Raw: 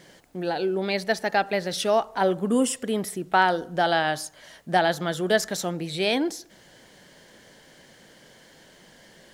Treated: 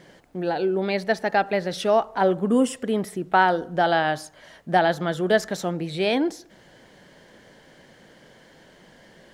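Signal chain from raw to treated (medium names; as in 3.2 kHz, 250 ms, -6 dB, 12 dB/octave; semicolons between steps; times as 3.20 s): treble shelf 3.6 kHz -10.5 dB; trim +2.5 dB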